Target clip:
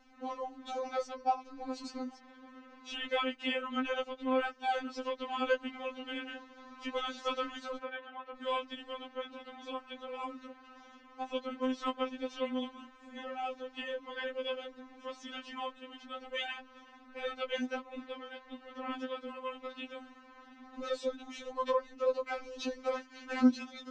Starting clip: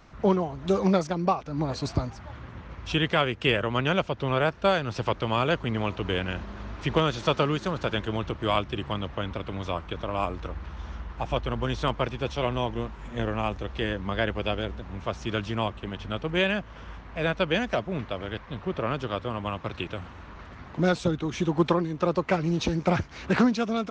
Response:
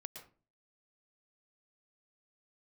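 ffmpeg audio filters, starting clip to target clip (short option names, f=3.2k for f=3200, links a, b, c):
-filter_complex "[0:a]tremolo=f=150:d=0.261,asettb=1/sr,asplit=3[a][b][c];[a]atrim=end=7.774[d];[b]atrim=start=7.77:end=8.36,asetpts=PTS-STARTPTS,afade=t=in:d=0.004:c=qsin,afade=t=out:st=0.586:d=0.004:c=qsin,acrossover=split=300 2600:gain=0.0891 1 0.0891[e][f][g];[e][f][g]amix=inputs=3:normalize=0[h];[c]atrim=start=8.356[i];[d][h]acrossfade=d=0.004:c1=hsin:c2=qsin[j];[j][i]acrossfade=d=0.004:c1=qsin:c2=hsin,afftfilt=real='re*3.46*eq(mod(b,12),0)':imag='im*3.46*eq(mod(b,12),0)':win_size=2048:overlap=0.75,volume=-5.5dB"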